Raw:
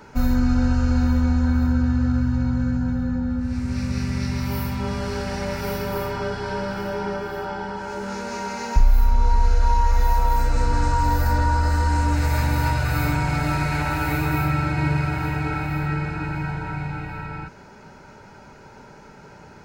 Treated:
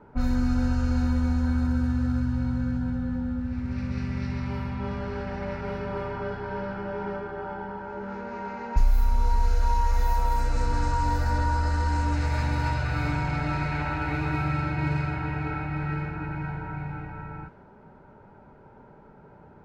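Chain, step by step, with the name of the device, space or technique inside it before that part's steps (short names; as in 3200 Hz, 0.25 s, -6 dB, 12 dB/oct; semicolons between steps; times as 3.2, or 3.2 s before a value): cassette deck with a dynamic noise filter (white noise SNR 33 dB; low-pass opened by the level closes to 990 Hz, open at -12.5 dBFS); gain -5 dB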